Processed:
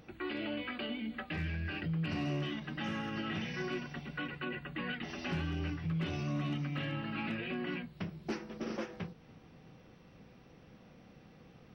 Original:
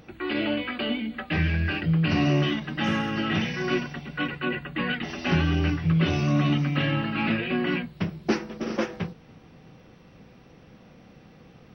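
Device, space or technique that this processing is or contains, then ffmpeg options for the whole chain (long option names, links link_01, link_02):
clipper into limiter: -af "asoftclip=type=hard:threshold=-16dB,alimiter=limit=-22.5dB:level=0:latency=1:release=224,volume=-6.5dB"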